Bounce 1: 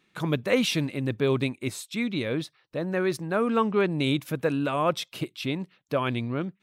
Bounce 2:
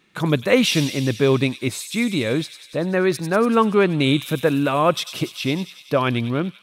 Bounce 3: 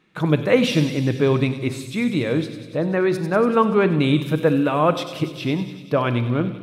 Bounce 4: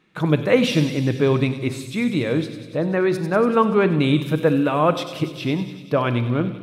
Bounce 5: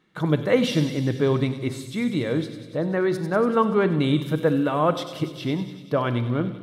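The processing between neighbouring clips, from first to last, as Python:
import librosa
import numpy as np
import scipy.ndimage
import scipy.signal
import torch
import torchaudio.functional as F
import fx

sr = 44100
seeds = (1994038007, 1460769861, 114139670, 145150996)

y1 = fx.echo_wet_highpass(x, sr, ms=96, feedback_pct=74, hz=4000.0, wet_db=-6.0)
y1 = y1 * 10.0 ** (7.0 / 20.0)
y2 = fx.high_shelf(y1, sr, hz=3500.0, db=-11.0)
y2 = fx.room_shoebox(y2, sr, seeds[0], volume_m3=1100.0, walls='mixed', distance_m=0.55)
y3 = y2
y4 = fx.notch(y3, sr, hz=2500.0, q=6.2)
y4 = y4 * 10.0 ** (-3.0 / 20.0)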